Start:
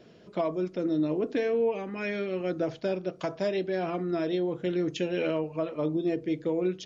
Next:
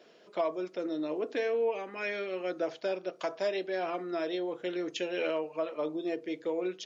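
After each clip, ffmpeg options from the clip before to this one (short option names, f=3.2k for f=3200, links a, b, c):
-af "highpass=460"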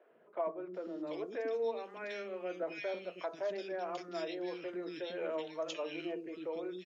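-filter_complex "[0:a]acrossover=split=330|2000[a][b][c];[a]adelay=100[d];[c]adelay=740[e];[d][b][e]amix=inputs=3:normalize=0,volume=-4.5dB"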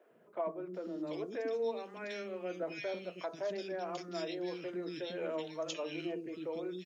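-af "bass=f=250:g=10,treble=f=4k:g=7,volume=-1dB"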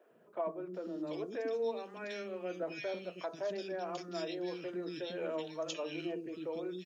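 -af "bandreject=f=2.1k:w=14"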